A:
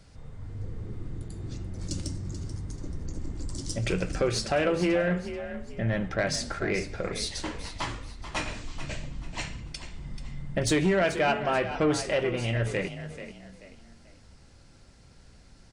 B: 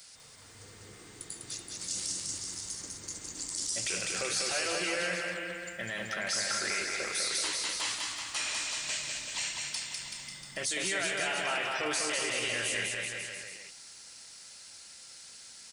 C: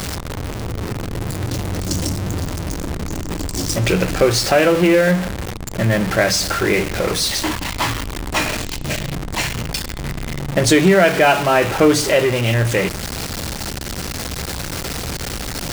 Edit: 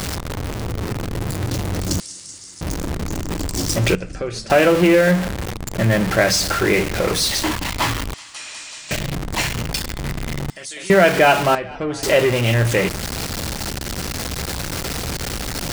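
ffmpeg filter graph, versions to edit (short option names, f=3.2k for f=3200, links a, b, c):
-filter_complex "[1:a]asplit=3[a][b][c];[0:a]asplit=2[d][e];[2:a]asplit=6[f][g][h][i][j][k];[f]atrim=end=2.002[l];[a]atrim=start=1.998:end=2.612[m];[g]atrim=start=2.608:end=3.952[n];[d]atrim=start=3.948:end=4.502[o];[h]atrim=start=4.498:end=8.142[p];[b]atrim=start=8.138:end=8.912[q];[i]atrim=start=8.908:end=10.502[r];[c]atrim=start=10.498:end=10.902[s];[j]atrim=start=10.898:end=11.552[t];[e]atrim=start=11.548:end=12.032[u];[k]atrim=start=12.028[v];[l][m]acrossfade=d=0.004:c1=hsin:c2=hsin[w];[w][n]acrossfade=d=0.004:c1=hsin:c2=hsin[x];[x][o]acrossfade=d=0.004:c1=hsin:c2=hsin[y];[y][p]acrossfade=d=0.004:c1=hsin:c2=hsin[z];[z][q]acrossfade=d=0.004:c1=hsin:c2=hsin[aa];[aa][r]acrossfade=d=0.004:c1=hsin:c2=hsin[ab];[ab][s]acrossfade=d=0.004:c1=hsin:c2=hsin[ac];[ac][t]acrossfade=d=0.004:c1=hsin:c2=hsin[ad];[ad][u]acrossfade=d=0.004:c1=hsin:c2=hsin[ae];[ae][v]acrossfade=d=0.004:c1=hsin:c2=hsin"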